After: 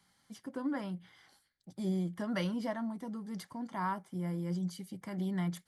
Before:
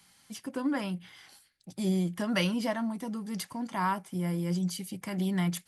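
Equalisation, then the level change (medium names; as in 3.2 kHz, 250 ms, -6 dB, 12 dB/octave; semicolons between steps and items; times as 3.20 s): peaking EQ 2.6 kHz -11.5 dB 0.23 oct; treble shelf 4.2 kHz -9 dB; -5.0 dB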